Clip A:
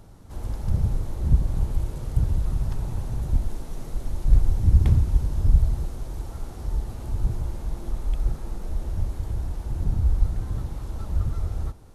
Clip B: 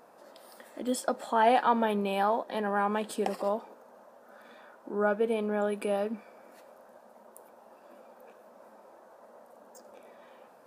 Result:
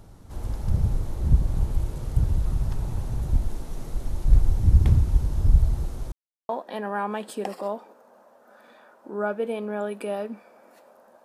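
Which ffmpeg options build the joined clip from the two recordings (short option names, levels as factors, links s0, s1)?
-filter_complex "[0:a]apad=whole_dur=11.24,atrim=end=11.24,asplit=2[s0][s1];[s0]atrim=end=6.12,asetpts=PTS-STARTPTS,afade=t=out:st=6.116:d=0.004:c=hsin[s2];[s1]atrim=start=6.12:end=6.49,asetpts=PTS-STARTPTS,volume=0[s3];[1:a]atrim=start=2.3:end=7.05,asetpts=PTS-STARTPTS,afade=t=in:d=0.004:c=hsin[s4];[s2][s3][s4]concat=n=3:v=0:a=1"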